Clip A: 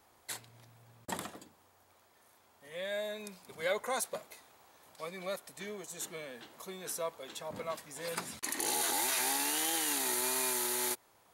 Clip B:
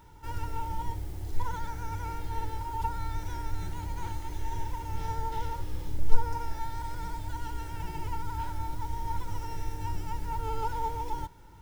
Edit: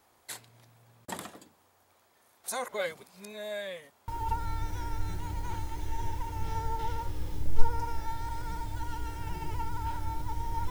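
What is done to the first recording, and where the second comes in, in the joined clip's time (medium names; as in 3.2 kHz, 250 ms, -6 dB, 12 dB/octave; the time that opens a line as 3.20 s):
clip A
2.44–4.08 s: reverse
4.08 s: go over to clip B from 2.61 s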